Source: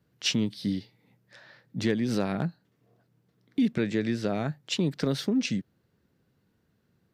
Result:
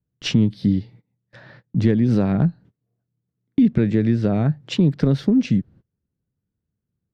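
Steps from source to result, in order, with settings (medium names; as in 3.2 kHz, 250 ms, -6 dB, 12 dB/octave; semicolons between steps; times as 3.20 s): gate -55 dBFS, range -27 dB; RIAA curve playback; in parallel at +3 dB: compression, threshold -30 dBFS, peak gain reduction 15.5 dB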